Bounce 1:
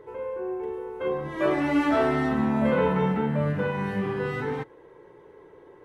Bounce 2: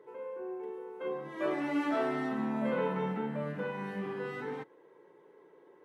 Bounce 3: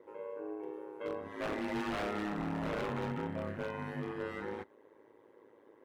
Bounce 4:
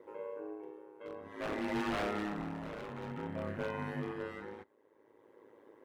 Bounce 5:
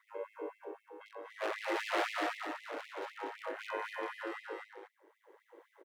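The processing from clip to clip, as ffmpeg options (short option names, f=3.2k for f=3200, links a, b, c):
-af "highpass=f=170:w=0.5412,highpass=f=170:w=1.3066,volume=-8.5dB"
-af "aeval=exprs='val(0)*sin(2*PI*53*n/s)':c=same,aeval=exprs='0.0299*(abs(mod(val(0)/0.0299+3,4)-2)-1)':c=same,volume=1dB"
-af "tremolo=f=0.53:d=0.67,volume=1.5dB"
-af "aecho=1:1:242:0.668,afftfilt=real='re*gte(b*sr/1024,270*pow(2000/270,0.5+0.5*sin(2*PI*3.9*pts/sr)))':imag='im*gte(b*sr/1024,270*pow(2000/270,0.5+0.5*sin(2*PI*3.9*pts/sr)))':win_size=1024:overlap=0.75,volume=3dB"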